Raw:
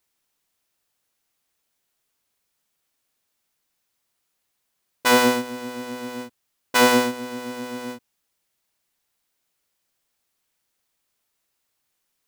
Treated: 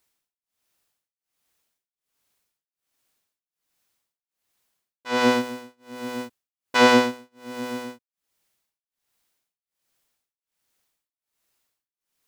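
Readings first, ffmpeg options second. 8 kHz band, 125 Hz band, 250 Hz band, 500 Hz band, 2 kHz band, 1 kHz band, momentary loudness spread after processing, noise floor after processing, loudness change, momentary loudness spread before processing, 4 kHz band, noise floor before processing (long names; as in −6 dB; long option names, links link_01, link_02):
−8.0 dB, 0.0 dB, 0.0 dB, −0.5 dB, −1.5 dB, −1.0 dB, 23 LU, below −85 dBFS, 0.0 dB, 17 LU, −2.0 dB, −76 dBFS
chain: -filter_complex "[0:a]acrossover=split=6300[link_01][link_02];[link_02]acompressor=threshold=-44dB:ratio=4:attack=1:release=60[link_03];[link_01][link_03]amix=inputs=2:normalize=0,tremolo=f=1.3:d=0.99,volume=2dB"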